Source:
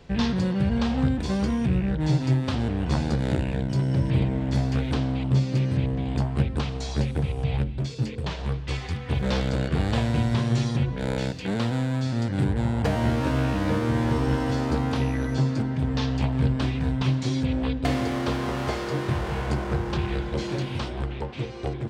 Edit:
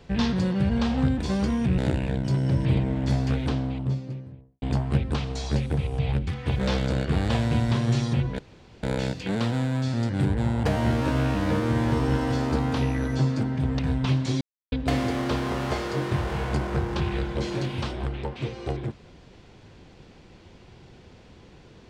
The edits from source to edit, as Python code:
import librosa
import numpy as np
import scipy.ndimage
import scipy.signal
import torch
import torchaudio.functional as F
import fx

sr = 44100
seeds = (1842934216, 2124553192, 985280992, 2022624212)

y = fx.studio_fade_out(x, sr, start_s=4.7, length_s=1.37)
y = fx.edit(y, sr, fx.cut(start_s=1.78, length_s=1.45),
    fx.cut(start_s=7.72, length_s=1.18),
    fx.insert_room_tone(at_s=11.02, length_s=0.44),
    fx.cut(start_s=15.98, length_s=0.78),
    fx.silence(start_s=17.38, length_s=0.31), tone=tone)